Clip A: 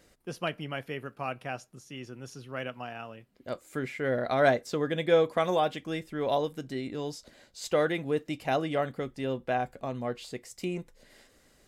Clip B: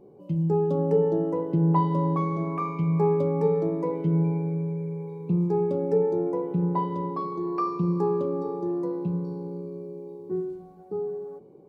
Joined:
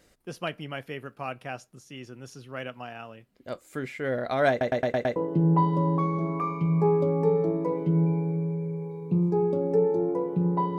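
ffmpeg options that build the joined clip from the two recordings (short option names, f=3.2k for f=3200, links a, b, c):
-filter_complex "[0:a]apad=whole_dur=10.78,atrim=end=10.78,asplit=6[a][b][c][d][e][f];[a]atrim=end=4.612[g];[b]atrim=start=4.498:end=4.612[h];[c]atrim=start=4.498:end=4.612[i];[d]atrim=start=4.498:end=4.612[j];[e]atrim=start=4.498:end=4.612[k];[f]atrim=start=4.498:end=4.612[l];[1:a]atrim=start=1.338:end=6.96[m];[g][h]acrossfade=d=0.004:c1=hsin:c2=hsin[n];[n][i]acrossfade=d=0.004:c1=hsin:c2=hsin[o];[o][j]acrossfade=d=0.004:c1=hsin:c2=hsin[p];[p][k]acrossfade=d=0.004:c1=hsin:c2=hsin[q];[q][l]acrossfade=d=0.004:c1=hsin:c2=hsin[r];[r][m]acrossfade=d=0.004:c1=hsin:c2=hsin"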